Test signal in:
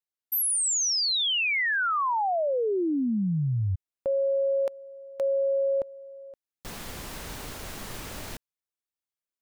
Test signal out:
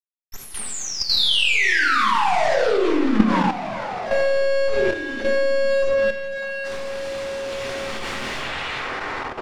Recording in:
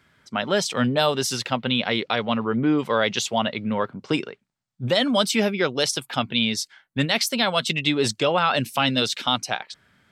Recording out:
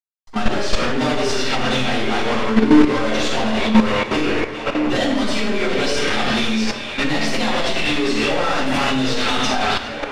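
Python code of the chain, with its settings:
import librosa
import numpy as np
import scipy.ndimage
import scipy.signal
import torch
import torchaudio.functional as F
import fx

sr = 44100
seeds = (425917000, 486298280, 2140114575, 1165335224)

p1 = scipy.signal.sosfilt(scipy.signal.bessel(8, 330.0, 'highpass', norm='mag', fs=sr, output='sos'), x)
p2 = fx.fuzz(p1, sr, gain_db=37.0, gate_db=-37.0)
p3 = p2 + fx.echo_stepped(p2, sr, ms=408, hz=2600.0, octaves=-0.7, feedback_pct=70, wet_db=-9.0, dry=0)
p4 = fx.power_curve(p3, sr, exponent=0.35)
p5 = fx.air_absorb(p4, sr, metres=91.0)
p6 = fx.doubler(p5, sr, ms=23.0, db=-12.5)
p7 = fx.room_shoebox(p6, sr, seeds[0], volume_m3=550.0, walls='mixed', distance_m=9.2)
p8 = fx.level_steps(p7, sr, step_db=10)
y = p8 * 10.0 ** (-18.0 / 20.0)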